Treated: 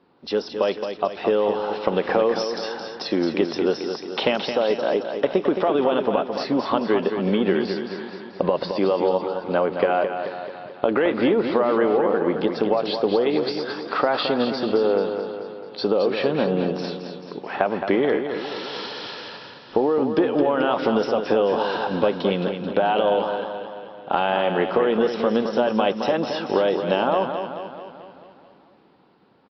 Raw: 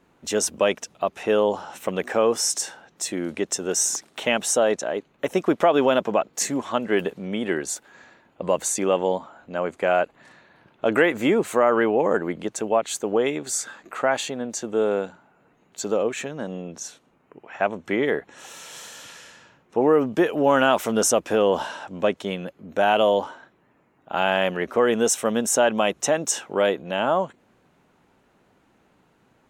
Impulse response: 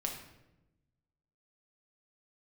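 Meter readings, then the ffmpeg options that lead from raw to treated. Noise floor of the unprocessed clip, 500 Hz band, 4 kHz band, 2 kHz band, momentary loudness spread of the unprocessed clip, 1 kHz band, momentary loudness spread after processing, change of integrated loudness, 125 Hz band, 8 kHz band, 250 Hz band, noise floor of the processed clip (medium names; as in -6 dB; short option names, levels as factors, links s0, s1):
-62 dBFS, +1.5 dB, +1.0 dB, -2.0 dB, 13 LU, +1.0 dB, 11 LU, +0.5 dB, +3.0 dB, under -25 dB, +3.0 dB, -46 dBFS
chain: -filter_complex "[0:a]highpass=f=300:p=1,equalizer=f=2100:w=0.88:g=-9.5,bandreject=f=640:w=12,dynaudnorm=f=270:g=13:m=6.31,alimiter=limit=0.473:level=0:latency=1:release=41,acompressor=threshold=0.0794:ratio=8,aecho=1:1:218|436|654|872|1090|1308|1526:0.422|0.236|0.132|0.0741|0.0415|0.0232|0.013,asplit=2[s0][s1];[1:a]atrim=start_sample=2205[s2];[s1][s2]afir=irnorm=-1:irlink=0,volume=0.0944[s3];[s0][s3]amix=inputs=2:normalize=0,aresample=11025,aresample=44100,volume=1.68" -ar 16000 -c:a aac -b:a 32k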